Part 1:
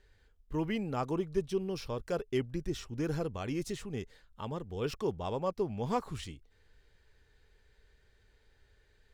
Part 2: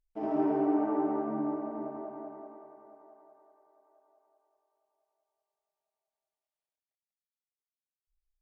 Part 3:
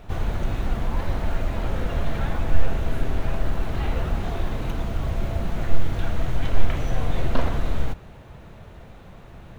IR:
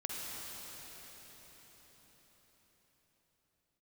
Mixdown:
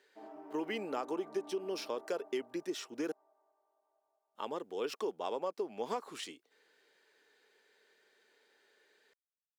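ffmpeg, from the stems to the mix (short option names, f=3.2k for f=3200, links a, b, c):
-filter_complex "[0:a]volume=2.5dB,asplit=3[a][b][c];[a]atrim=end=3.12,asetpts=PTS-STARTPTS,afade=t=out:st=3.116:d=0.004:c=hsin[d];[b]atrim=start=3.12:end=4.35,asetpts=PTS-STARTPTS,volume=0[e];[c]atrim=start=4.35,asetpts=PTS-STARTPTS,afade=t=in:d=0.004:c=hsin[f];[d][e][f]concat=n=3:v=0:a=1[g];[1:a]highpass=f=840:p=1,acompressor=threshold=-38dB:ratio=10,volume=-9dB[h];[g]highpass=f=300:w=0.5412,highpass=f=300:w=1.3066,acompressor=threshold=-32dB:ratio=10,volume=0dB[i];[h][i]amix=inputs=2:normalize=0"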